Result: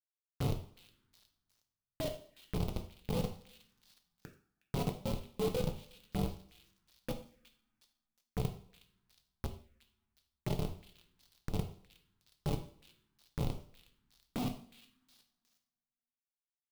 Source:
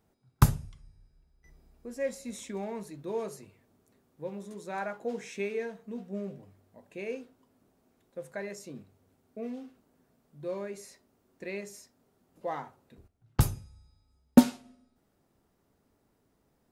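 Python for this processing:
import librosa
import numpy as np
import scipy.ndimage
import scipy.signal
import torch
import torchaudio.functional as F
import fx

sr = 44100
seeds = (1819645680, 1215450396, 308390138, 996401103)

p1 = fx.partial_stretch(x, sr, pct=119)
p2 = fx.schmitt(p1, sr, flips_db=-31.0)
p3 = fx.low_shelf(p2, sr, hz=98.0, db=-7.0)
p4 = fx.level_steps(p3, sr, step_db=12)
p5 = fx.rev_double_slope(p4, sr, seeds[0], early_s=0.48, late_s=1.9, knee_db=-25, drr_db=3.5)
p6 = fx.env_phaser(p5, sr, low_hz=490.0, high_hz=1700.0, full_db=-54.5)
p7 = p6 + fx.echo_stepped(p6, sr, ms=364, hz=3200.0, octaves=0.7, feedback_pct=70, wet_db=-12, dry=0)
p8 = fx.clock_jitter(p7, sr, seeds[1], jitter_ms=0.027)
y = F.gain(torch.from_numpy(p8), 14.5).numpy()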